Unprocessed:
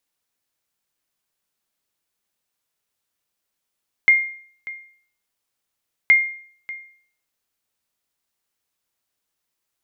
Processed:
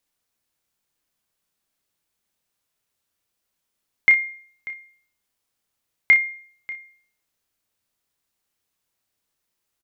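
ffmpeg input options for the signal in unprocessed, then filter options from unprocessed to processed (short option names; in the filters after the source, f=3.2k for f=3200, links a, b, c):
-f lavfi -i "aevalsrc='0.473*(sin(2*PI*2120*mod(t,2.02))*exp(-6.91*mod(t,2.02)/0.53)+0.112*sin(2*PI*2120*max(mod(t,2.02)-0.59,0))*exp(-6.91*max(mod(t,2.02)-0.59,0)/0.53))':d=4.04:s=44100"
-filter_complex "[0:a]lowshelf=f=250:g=4,asplit=2[a][b];[b]aecho=0:1:31|61:0.398|0.178[c];[a][c]amix=inputs=2:normalize=0"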